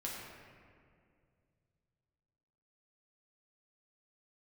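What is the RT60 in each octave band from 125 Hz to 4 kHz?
3.6, 2.7, 2.5, 2.0, 1.9, 1.2 s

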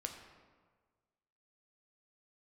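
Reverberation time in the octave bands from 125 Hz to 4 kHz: 1.7, 1.5, 1.6, 1.5, 1.2, 0.90 s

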